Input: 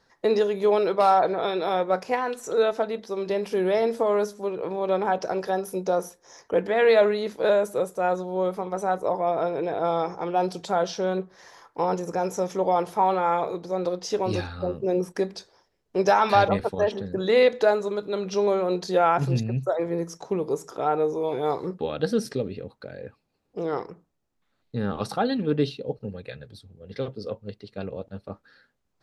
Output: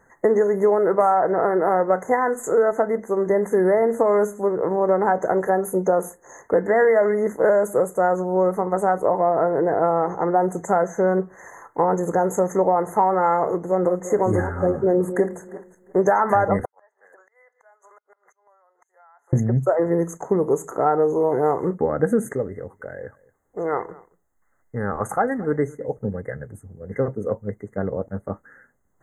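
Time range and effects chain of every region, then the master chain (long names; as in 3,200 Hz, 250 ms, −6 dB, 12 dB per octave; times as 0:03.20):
0:13.65–0:16.00: feedback delay that plays each chunk backwards 175 ms, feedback 42%, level −13 dB + notch filter 6,200 Hz, Q 9.8
0:16.65–0:19.33: high-pass filter 780 Hz 24 dB per octave + gate with flip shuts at −27 dBFS, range −34 dB + downward compressor 16 to 1, threshold −55 dBFS
0:22.33–0:25.97: parametric band 200 Hz −9.5 dB 2.3 octaves + single-tap delay 223 ms −23 dB
whole clip: brick-wall band-stop 2,100–6,200 Hz; downward compressor, threshold −22 dBFS; level +8 dB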